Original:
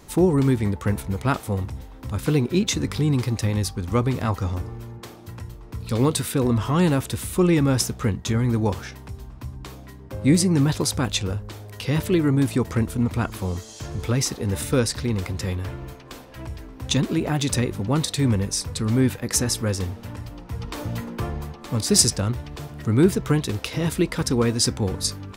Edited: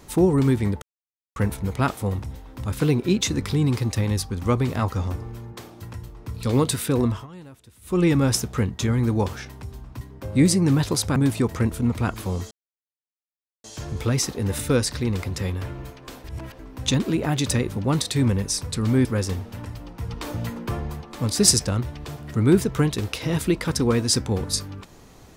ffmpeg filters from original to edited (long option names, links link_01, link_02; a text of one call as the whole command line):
ffmpeg -i in.wav -filter_complex "[0:a]asplit=10[link_01][link_02][link_03][link_04][link_05][link_06][link_07][link_08][link_09][link_10];[link_01]atrim=end=0.82,asetpts=PTS-STARTPTS,afade=type=out:start_time=0.816:duration=0.004:curve=hsin,apad=pad_dur=0.54[link_11];[link_02]atrim=start=0.82:end=6.73,asetpts=PTS-STARTPTS,afade=type=in:duration=0.004:curve=hsin,afade=type=out:start_time=5.68:duration=0.23:silence=0.0707946[link_12];[link_03]atrim=start=6.73:end=7.27,asetpts=PTS-STARTPTS,volume=-23dB[link_13];[link_04]atrim=start=7.27:end=9.472,asetpts=PTS-STARTPTS,afade=type=in:duration=0.23:silence=0.0707946[link_14];[link_05]atrim=start=9.898:end=11.052[link_15];[link_06]atrim=start=12.318:end=13.67,asetpts=PTS-STARTPTS,afade=type=out:start_time=1.348:duration=0.004:curve=hsin,apad=pad_dur=1.13[link_16];[link_07]atrim=start=13.67:end=16.272,asetpts=PTS-STARTPTS,afade=type=in:duration=0.004:curve=hsin[link_17];[link_08]atrim=start=16.268:end=16.622,asetpts=PTS-STARTPTS,areverse[link_18];[link_09]atrim=start=16.618:end=19.082[link_19];[link_10]atrim=start=19.558[link_20];[link_11][link_12][link_13][link_14]concat=n=4:v=0:a=1[link_21];[link_21][link_15]acrossfade=duration=0.004:curve1=hsin:curve2=hsin[link_22];[link_16][link_17]concat=n=2:v=0:a=1[link_23];[link_22][link_23]acrossfade=duration=0.004:curve1=hsin:curve2=hsin[link_24];[link_24][link_18]acrossfade=duration=0.004:curve1=hsin:curve2=hsin[link_25];[link_25][link_19]acrossfade=duration=0.004:curve1=hsin:curve2=hsin[link_26];[link_26][link_20]acrossfade=duration=0.004:curve1=hsin:curve2=hsin" out.wav